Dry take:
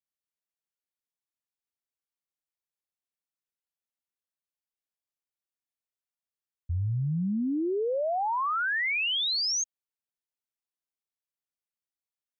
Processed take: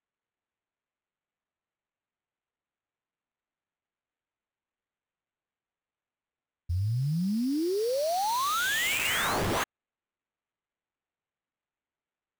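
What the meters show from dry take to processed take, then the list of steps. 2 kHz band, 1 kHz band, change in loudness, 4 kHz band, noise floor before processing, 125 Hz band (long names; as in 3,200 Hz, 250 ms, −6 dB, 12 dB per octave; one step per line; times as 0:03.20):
0.0 dB, +1.0 dB, −0.5 dB, −4.0 dB, below −85 dBFS, +0.5 dB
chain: sample-rate reduction 5,100 Hz, jitter 20%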